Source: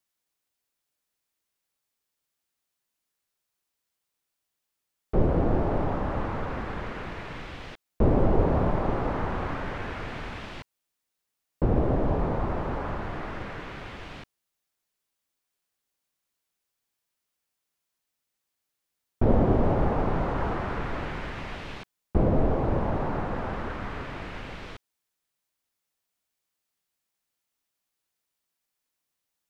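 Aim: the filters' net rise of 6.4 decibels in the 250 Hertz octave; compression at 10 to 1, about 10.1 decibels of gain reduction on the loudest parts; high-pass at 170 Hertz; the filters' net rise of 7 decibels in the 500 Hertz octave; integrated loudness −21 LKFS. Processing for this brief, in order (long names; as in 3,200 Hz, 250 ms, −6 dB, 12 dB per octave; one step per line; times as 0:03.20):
high-pass filter 170 Hz
parametric band 250 Hz +7.5 dB
parametric band 500 Hz +6.5 dB
downward compressor 10 to 1, threshold −22 dBFS
level +8 dB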